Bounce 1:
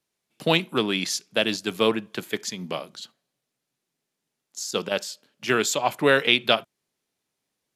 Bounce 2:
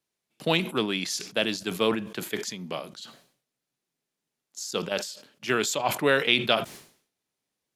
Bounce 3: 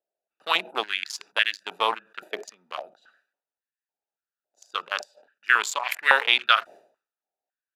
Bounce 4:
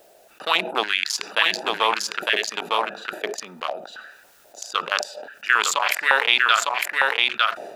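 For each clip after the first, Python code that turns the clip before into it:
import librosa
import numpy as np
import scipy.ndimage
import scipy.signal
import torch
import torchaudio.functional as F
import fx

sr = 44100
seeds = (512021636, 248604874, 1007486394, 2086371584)

y1 = fx.sustainer(x, sr, db_per_s=110.0)
y1 = y1 * 10.0 ** (-3.5 / 20.0)
y2 = fx.wiener(y1, sr, points=41)
y2 = fx.filter_held_highpass(y2, sr, hz=3.6, low_hz=650.0, high_hz=1800.0)
y2 = y2 * 10.0 ** (2.0 / 20.0)
y3 = y2 + 10.0 ** (-4.0 / 20.0) * np.pad(y2, (int(905 * sr / 1000.0), 0))[:len(y2)]
y3 = fx.env_flatten(y3, sr, amount_pct=50)
y3 = y3 * 10.0 ** (-1.0 / 20.0)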